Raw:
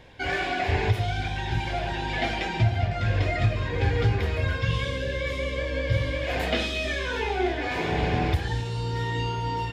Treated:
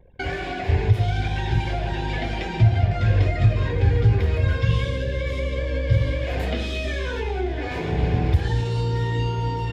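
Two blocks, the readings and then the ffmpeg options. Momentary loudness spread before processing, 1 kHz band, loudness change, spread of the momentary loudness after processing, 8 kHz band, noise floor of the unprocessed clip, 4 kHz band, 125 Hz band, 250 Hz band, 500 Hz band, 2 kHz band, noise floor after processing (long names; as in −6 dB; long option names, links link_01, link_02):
5 LU, −1.5 dB, +3.5 dB, 8 LU, can't be measured, −31 dBFS, −2.0 dB, +6.0 dB, +2.5 dB, +1.5 dB, −2.0 dB, −29 dBFS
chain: -filter_complex "[0:a]anlmdn=0.1,equalizer=frequency=430:width=1.6:gain=5,acrossover=split=190[link_01][link_02];[link_02]acompressor=threshold=-35dB:ratio=5[link_03];[link_01][link_03]amix=inputs=2:normalize=0,volume=6.5dB"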